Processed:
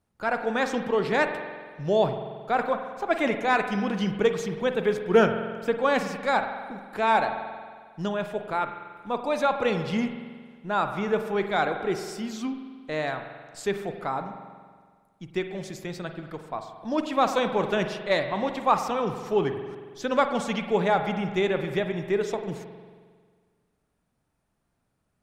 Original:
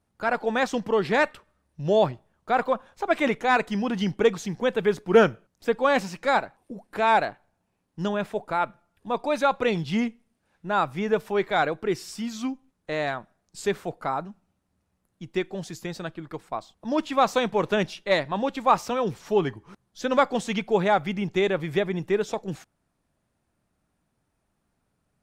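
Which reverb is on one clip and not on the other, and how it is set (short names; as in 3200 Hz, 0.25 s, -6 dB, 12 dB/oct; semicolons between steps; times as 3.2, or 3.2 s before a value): spring tank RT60 1.7 s, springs 45 ms, chirp 35 ms, DRR 7 dB; gain -2 dB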